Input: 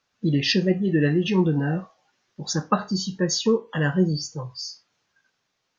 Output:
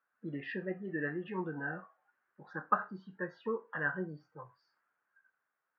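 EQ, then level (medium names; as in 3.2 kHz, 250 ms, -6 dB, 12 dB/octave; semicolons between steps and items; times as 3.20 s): high-pass 570 Hz 6 dB/octave; four-pole ladder low-pass 1.7 kHz, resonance 60%; distance through air 110 m; 0.0 dB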